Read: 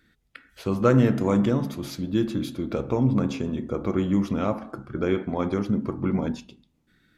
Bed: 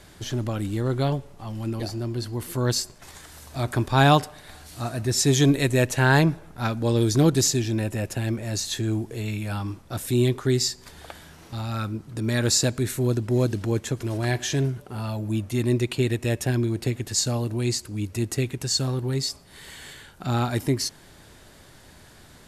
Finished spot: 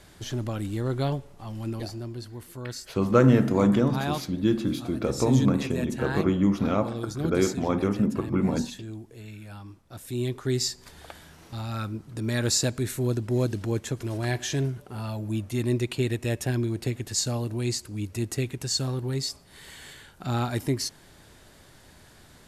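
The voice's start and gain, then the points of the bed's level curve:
2.30 s, +0.5 dB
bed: 1.74 s -3 dB
2.63 s -13 dB
9.83 s -13 dB
10.63 s -3 dB

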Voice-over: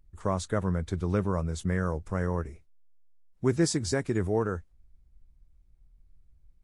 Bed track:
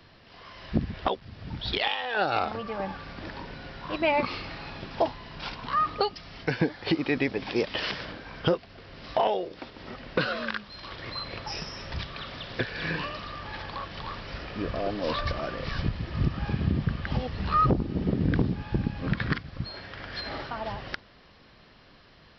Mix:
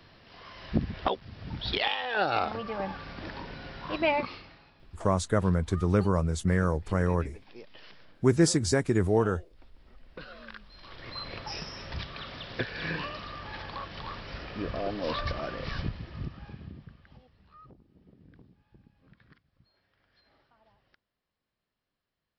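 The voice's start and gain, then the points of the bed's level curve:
4.80 s, +3.0 dB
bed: 4.09 s -1 dB
4.75 s -21.5 dB
10 s -21.5 dB
11.26 s -2.5 dB
15.73 s -2.5 dB
17.48 s -31.5 dB

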